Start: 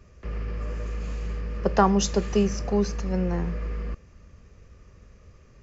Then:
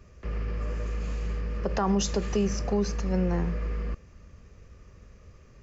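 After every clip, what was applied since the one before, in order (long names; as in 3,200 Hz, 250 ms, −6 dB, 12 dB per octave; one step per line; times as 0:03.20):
brickwall limiter −17 dBFS, peak gain reduction 11 dB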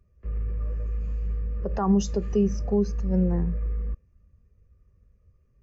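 every bin expanded away from the loudest bin 1.5 to 1
level +4.5 dB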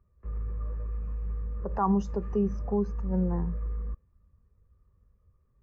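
drawn EQ curve 640 Hz 0 dB, 950 Hz +10 dB, 3,700 Hz −13 dB
level −4.5 dB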